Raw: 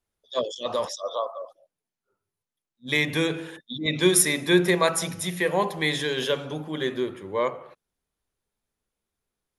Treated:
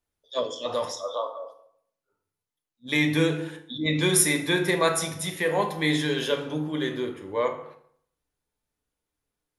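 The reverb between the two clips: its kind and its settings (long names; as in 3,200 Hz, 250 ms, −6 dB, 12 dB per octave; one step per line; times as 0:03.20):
feedback delay network reverb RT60 0.64 s, low-frequency decay 1.05×, high-frequency decay 0.7×, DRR 4 dB
level −2 dB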